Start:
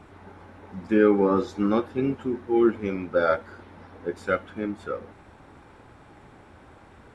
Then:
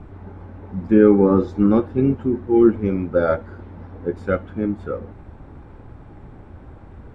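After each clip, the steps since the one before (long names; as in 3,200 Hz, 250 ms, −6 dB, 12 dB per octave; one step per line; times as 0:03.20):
spectral tilt −3.5 dB per octave
level +1 dB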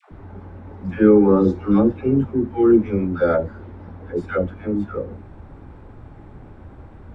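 all-pass dispersion lows, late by 116 ms, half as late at 590 Hz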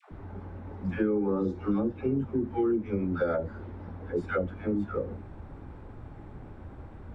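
downward compressor 6 to 1, threshold −21 dBFS, peak gain reduction 12.5 dB
level −3.5 dB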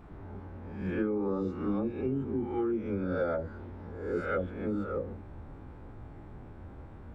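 peak hold with a rise ahead of every peak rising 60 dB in 0.74 s
level −4.5 dB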